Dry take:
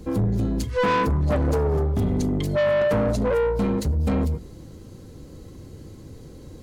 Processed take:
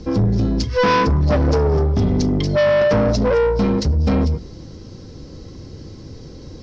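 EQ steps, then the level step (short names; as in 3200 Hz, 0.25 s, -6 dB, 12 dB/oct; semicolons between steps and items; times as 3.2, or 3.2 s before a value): synth low-pass 5400 Hz, resonance Q 6.9; air absorption 110 m; +5.5 dB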